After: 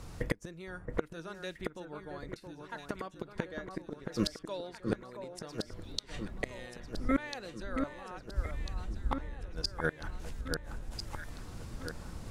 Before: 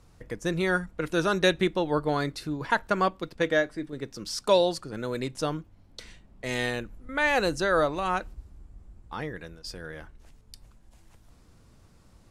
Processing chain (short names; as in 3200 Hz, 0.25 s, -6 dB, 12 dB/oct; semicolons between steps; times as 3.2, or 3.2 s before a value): flipped gate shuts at -28 dBFS, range -30 dB; echo with dull and thin repeats by turns 0.673 s, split 1700 Hz, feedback 73%, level -5 dB; gain +10.5 dB